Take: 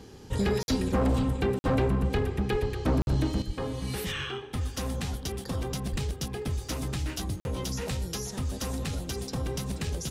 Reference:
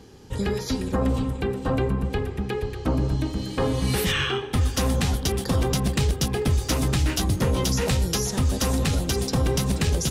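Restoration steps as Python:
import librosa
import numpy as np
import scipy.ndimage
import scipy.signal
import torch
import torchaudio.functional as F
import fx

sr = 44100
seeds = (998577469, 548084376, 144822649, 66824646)

y = fx.fix_declip(x, sr, threshold_db=-20.5)
y = fx.highpass(y, sr, hz=140.0, slope=24, at=(2.51, 2.63), fade=0.02)
y = fx.highpass(y, sr, hz=140.0, slope=24, at=(3.46, 3.58), fade=0.02)
y = fx.highpass(y, sr, hz=140.0, slope=24, at=(5.91, 6.03), fade=0.02)
y = fx.fix_interpolate(y, sr, at_s=(0.63, 1.59, 3.02, 7.4), length_ms=51.0)
y = fx.fix_level(y, sr, at_s=3.42, step_db=9.5)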